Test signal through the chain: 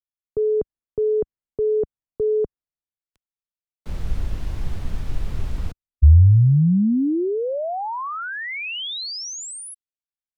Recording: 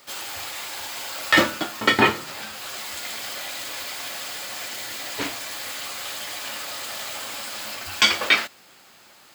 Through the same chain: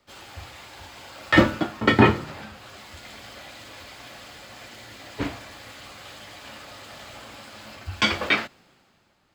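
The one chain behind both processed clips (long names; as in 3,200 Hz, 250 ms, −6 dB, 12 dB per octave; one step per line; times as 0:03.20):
RIAA equalisation playback
multiband upward and downward expander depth 40%
level −4 dB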